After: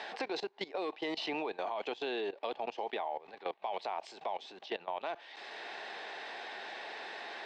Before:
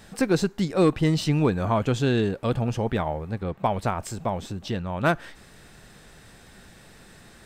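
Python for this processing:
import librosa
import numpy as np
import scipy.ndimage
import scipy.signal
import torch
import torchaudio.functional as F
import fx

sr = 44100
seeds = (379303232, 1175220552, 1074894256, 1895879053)

y = fx.cabinet(x, sr, low_hz=460.0, low_slope=24, high_hz=4300.0, hz=(520.0, 800.0, 1300.0), db=(-7, 4, -9))
y = fx.level_steps(y, sr, step_db=19)
y = fx.dynamic_eq(y, sr, hz=1600.0, q=2.7, threshold_db=-59.0, ratio=4.0, max_db=-6)
y = fx.band_squash(y, sr, depth_pct=70)
y = F.gain(torch.from_numpy(y), 2.5).numpy()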